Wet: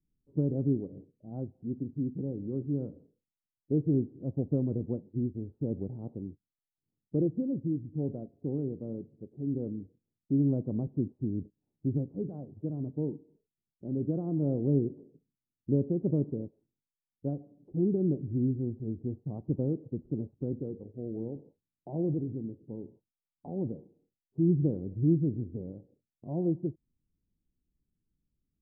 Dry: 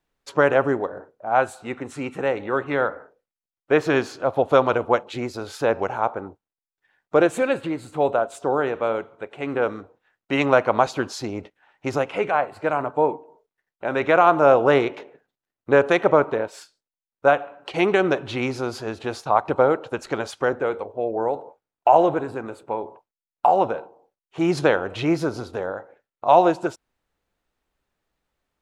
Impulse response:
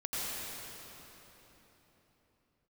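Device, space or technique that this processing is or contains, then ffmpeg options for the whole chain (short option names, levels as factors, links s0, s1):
the neighbour's flat through the wall: -af "lowpass=f=280:w=0.5412,lowpass=f=280:w=1.3066,equalizer=f=150:t=o:w=0.77:g=3.5"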